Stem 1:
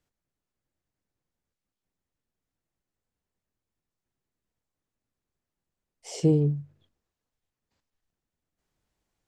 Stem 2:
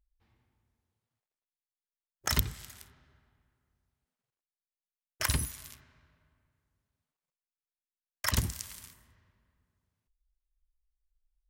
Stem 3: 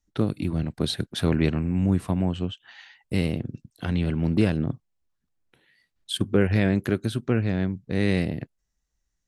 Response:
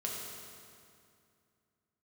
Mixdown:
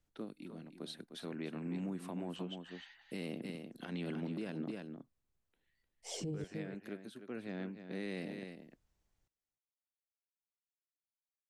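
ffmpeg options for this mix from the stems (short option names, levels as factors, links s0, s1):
-filter_complex "[0:a]bandreject=f=50:t=h:w=6,bandreject=f=100:t=h:w=6,bandreject=f=150:t=h:w=6,bandreject=f=200:t=h:w=6,bandreject=f=250:t=h:w=6,bandreject=f=300:t=h:w=6,bandreject=f=350:t=h:w=6,bandreject=f=400:t=h:w=6,bandreject=f=450:t=h:w=6,volume=0.596,asplit=3[s0][s1][s2];[s0]atrim=end=6.44,asetpts=PTS-STARTPTS,afade=t=out:st=6.436:d=0.004:c=hsin[s3];[s1]atrim=start=6.44:end=8.04,asetpts=PTS-STARTPTS,volume=0[s4];[s2]atrim=start=8.04,asetpts=PTS-STARTPTS,afade=t=in:d=0.004:c=hsin[s5];[s3][s4][s5]concat=n=3:v=0:a=1,asplit=2[s6][s7];[s7]volume=0.158[s8];[2:a]highpass=f=200:w=0.5412,highpass=f=200:w=1.3066,volume=0.891,afade=t=in:st=1.33:d=0.35:silence=0.316228,afade=t=out:st=4.61:d=0.41:silence=0.251189,afade=t=in:st=7.29:d=0.25:silence=0.421697,asplit=2[s9][s10];[s10]volume=0.335[s11];[s6]lowshelf=f=110:g=11,alimiter=limit=0.075:level=0:latency=1:release=147,volume=1[s12];[s8][s11]amix=inputs=2:normalize=0,aecho=0:1:304:1[s13];[s9][s12][s13]amix=inputs=3:normalize=0,alimiter=level_in=2.51:limit=0.0631:level=0:latency=1:release=134,volume=0.398"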